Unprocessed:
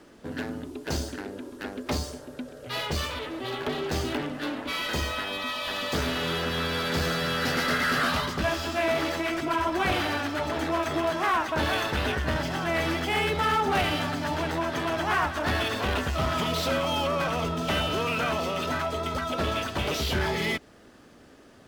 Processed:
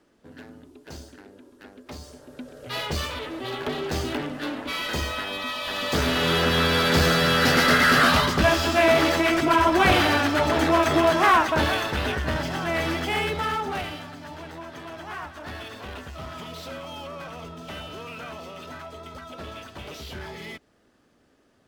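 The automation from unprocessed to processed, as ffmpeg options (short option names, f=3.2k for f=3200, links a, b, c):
-af "volume=7.5dB,afade=t=in:st=1.98:d=0.7:silence=0.251189,afade=t=in:st=5.68:d=0.76:silence=0.473151,afade=t=out:st=11.33:d=0.47:silence=0.473151,afade=t=out:st=13.09:d=0.95:silence=0.266073"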